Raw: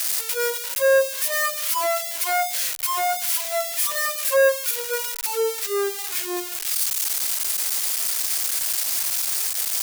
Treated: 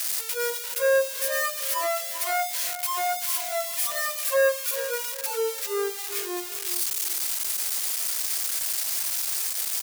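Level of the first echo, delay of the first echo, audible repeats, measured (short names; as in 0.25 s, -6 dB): -12.0 dB, 0.395 s, 3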